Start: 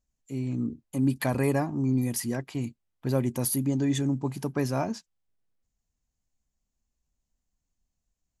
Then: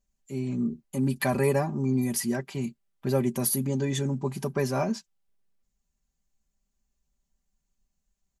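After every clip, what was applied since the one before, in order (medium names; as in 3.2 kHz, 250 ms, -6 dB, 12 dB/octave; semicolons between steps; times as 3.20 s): comb 5.1 ms, depth 77%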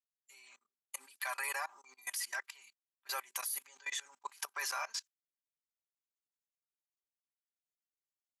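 high-pass 1.1 kHz 24 dB/octave; gate -55 dBFS, range -23 dB; level held to a coarse grid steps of 22 dB; trim +6.5 dB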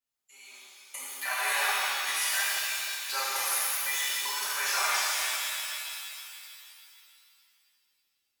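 pitch-shifted reverb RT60 2.6 s, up +7 st, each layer -2 dB, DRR -9.5 dB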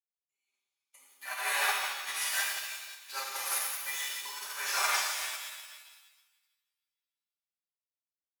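upward expansion 2.5:1, over -51 dBFS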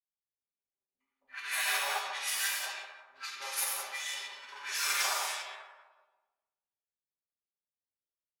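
level-controlled noise filter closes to 580 Hz, open at -30 dBFS; three bands offset in time lows, highs, mids 60/270 ms, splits 260/1300 Hz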